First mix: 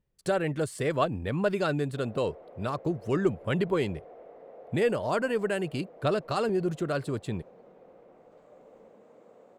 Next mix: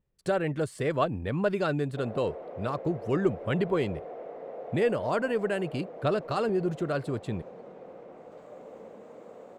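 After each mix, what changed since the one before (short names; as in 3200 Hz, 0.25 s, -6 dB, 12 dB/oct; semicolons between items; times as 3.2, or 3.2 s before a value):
speech: add high shelf 4700 Hz -7 dB; background +8.0 dB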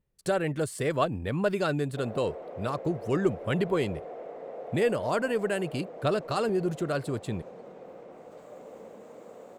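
master: add high shelf 6200 Hz +12 dB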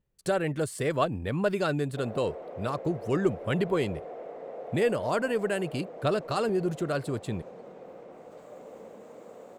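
none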